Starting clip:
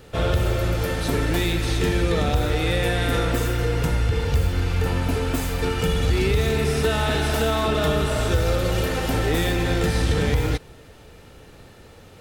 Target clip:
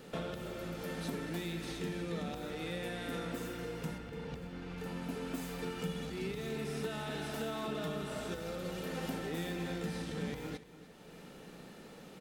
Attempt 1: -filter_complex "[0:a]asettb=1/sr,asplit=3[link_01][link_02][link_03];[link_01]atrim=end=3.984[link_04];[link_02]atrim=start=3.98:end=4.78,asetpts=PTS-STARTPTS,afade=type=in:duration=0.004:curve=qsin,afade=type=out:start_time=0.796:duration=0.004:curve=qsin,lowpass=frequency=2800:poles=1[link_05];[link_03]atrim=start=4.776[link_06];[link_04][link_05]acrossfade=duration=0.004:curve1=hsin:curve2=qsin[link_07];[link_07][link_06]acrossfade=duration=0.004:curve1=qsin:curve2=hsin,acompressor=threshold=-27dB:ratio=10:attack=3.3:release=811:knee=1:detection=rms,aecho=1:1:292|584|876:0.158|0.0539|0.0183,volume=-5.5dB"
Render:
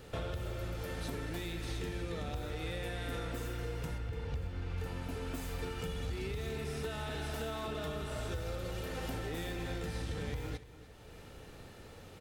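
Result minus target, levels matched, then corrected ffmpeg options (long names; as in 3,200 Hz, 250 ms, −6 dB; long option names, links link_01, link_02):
125 Hz band +3.0 dB
-filter_complex "[0:a]asettb=1/sr,asplit=3[link_01][link_02][link_03];[link_01]atrim=end=3.984[link_04];[link_02]atrim=start=3.98:end=4.78,asetpts=PTS-STARTPTS,afade=type=in:duration=0.004:curve=qsin,afade=type=out:start_time=0.796:duration=0.004:curve=qsin,lowpass=frequency=2800:poles=1[link_05];[link_03]atrim=start=4.776[link_06];[link_04][link_05]acrossfade=duration=0.004:curve1=hsin:curve2=qsin[link_07];[link_07][link_06]acrossfade=duration=0.004:curve1=qsin:curve2=hsin,acompressor=threshold=-27dB:ratio=10:attack=3.3:release=811:knee=1:detection=rms,lowshelf=frequency=130:width_type=q:width=3:gain=-10.5,aecho=1:1:292|584|876:0.158|0.0539|0.0183,volume=-5.5dB"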